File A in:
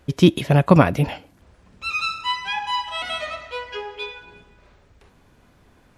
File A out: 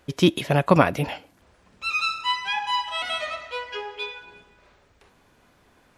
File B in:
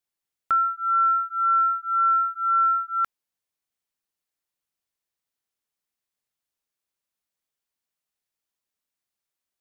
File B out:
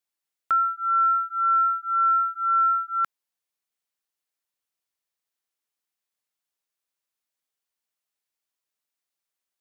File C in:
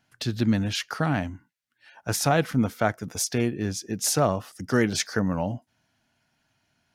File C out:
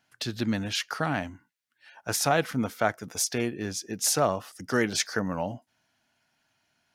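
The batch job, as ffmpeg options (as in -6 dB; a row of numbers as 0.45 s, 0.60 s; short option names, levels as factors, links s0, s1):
-af "lowshelf=f=250:g=-9.5"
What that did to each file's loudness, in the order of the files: -3.0 LU, -0.5 LU, -2.5 LU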